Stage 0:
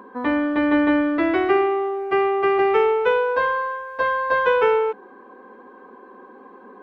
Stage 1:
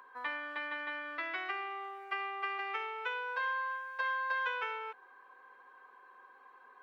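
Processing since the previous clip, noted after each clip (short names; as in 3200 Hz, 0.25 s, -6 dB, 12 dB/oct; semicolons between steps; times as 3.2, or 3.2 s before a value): compressor, threshold -20 dBFS, peak gain reduction 7 dB; HPF 1400 Hz 12 dB/oct; gain -4.5 dB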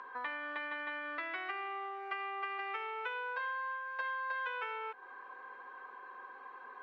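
compressor 2.5:1, threshold -49 dBFS, peak gain reduction 12.5 dB; air absorption 130 m; gain +8.5 dB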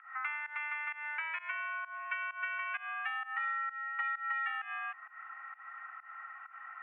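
mistuned SSB +300 Hz 520–2400 Hz; pump 130 bpm, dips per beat 1, -19 dB, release 0.165 s; gain +3 dB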